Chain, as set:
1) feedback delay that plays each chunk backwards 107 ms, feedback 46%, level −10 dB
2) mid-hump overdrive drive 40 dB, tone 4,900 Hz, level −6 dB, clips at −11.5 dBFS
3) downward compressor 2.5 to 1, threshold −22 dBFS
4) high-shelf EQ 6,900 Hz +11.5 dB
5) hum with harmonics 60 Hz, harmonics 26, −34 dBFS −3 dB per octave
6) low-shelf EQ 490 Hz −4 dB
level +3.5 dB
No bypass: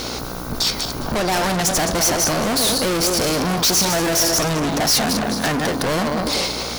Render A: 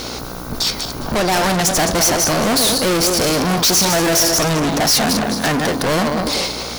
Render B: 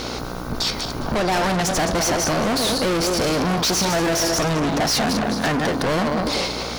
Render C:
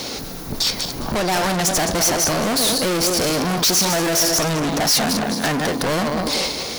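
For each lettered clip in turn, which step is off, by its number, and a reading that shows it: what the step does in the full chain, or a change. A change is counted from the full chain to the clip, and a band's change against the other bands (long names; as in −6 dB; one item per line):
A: 3, change in momentary loudness spread +2 LU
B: 4, 8 kHz band −5.5 dB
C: 5, change in crest factor −2.0 dB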